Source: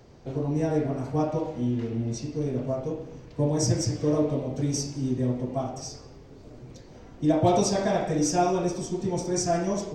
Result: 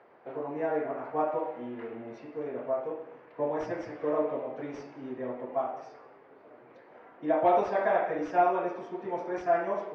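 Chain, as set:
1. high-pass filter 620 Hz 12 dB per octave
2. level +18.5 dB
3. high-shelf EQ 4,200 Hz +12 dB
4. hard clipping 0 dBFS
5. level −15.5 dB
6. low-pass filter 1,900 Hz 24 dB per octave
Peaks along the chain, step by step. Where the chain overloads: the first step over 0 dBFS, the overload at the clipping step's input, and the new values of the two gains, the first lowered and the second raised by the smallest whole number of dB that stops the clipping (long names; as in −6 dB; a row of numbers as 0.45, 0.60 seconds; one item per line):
−14.5, +4.0, +10.0, 0.0, −15.5, −14.5 dBFS
step 2, 10.0 dB
step 2 +8.5 dB, step 5 −5.5 dB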